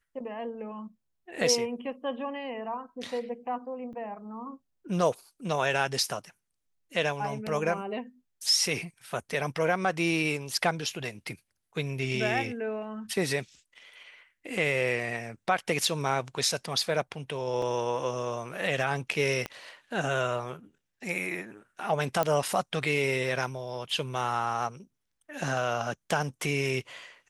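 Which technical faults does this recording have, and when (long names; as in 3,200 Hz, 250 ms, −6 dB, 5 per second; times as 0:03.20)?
0:03.93–0:03.94: drop-out 5.9 ms
0:17.62: drop-out 3.2 ms
0:19.46: click −18 dBFS
0:22.23: click −12 dBFS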